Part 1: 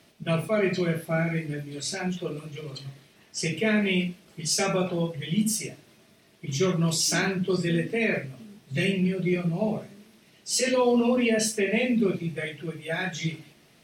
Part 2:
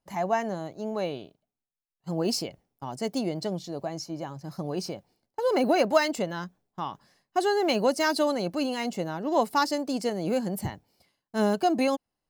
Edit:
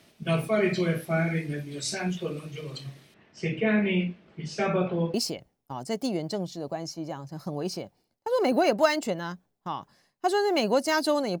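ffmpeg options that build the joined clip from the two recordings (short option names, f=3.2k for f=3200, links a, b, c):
-filter_complex "[0:a]asettb=1/sr,asplit=3[a][b][c];[a]atrim=end=3.144[d];[b]atrim=start=3.14:end=5.14,asetpts=PTS-STARTPTS,afade=t=in:d=0.004:c=qsin,afade=t=out:st=1.996:d=0.004:c=qsin,lowpass=2.3k[e];[c]atrim=start=5.136[f];[d][e]acrossfade=d=0.004:c1=hsin:c2=qsin[g];[g][f]acrossfade=d=0.004:c1=qsin:c2=hsin,apad=whole_dur=11.4,atrim=end=11.4,atrim=end=5.142[h];[1:a]atrim=start=2.258:end=8.52[i];[h][i]acrossfade=d=0.004:c1=hsin:c2=hsin"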